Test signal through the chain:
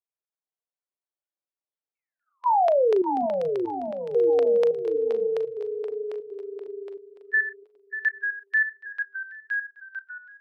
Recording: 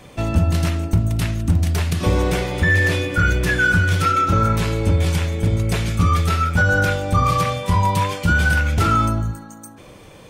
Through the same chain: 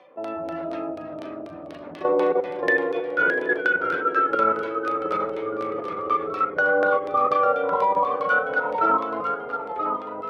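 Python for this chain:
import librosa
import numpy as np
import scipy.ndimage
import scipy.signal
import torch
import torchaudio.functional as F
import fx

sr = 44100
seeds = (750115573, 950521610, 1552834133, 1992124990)

y = fx.hpss_only(x, sr, part='harmonic')
y = fx.tilt_eq(y, sr, slope=-4.5)
y = fx.filter_lfo_lowpass(y, sr, shape='saw_down', hz=4.1, low_hz=590.0, high_hz=3900.0, q=1.0)
y = scipy.signal.sosfilt(scipy.signal.butter(4, 430.0, 'highpass', fs=sr, output='sos'), y)
y = fx.high_shelf(y, sr, hz=4800.0, db=4.0)
y = fx.notch(y, sr, hz=7300.0, q=6.6)
y = fx.doubler(y, sr, ms=37.0, db=-13.0)
y = fx.level_steps(y, sr, step_db=11)
y = fx.echo_pitch(y, sr, ms=457, semitones=-1, count=3, db_per_echo=-6.0)
y = fx.echo_feedback(y, sr, ms=775, feedback_pct=25, wet_db=-22.0)
y = F.gain(torch.from_numpy(y), 2.5).numpy()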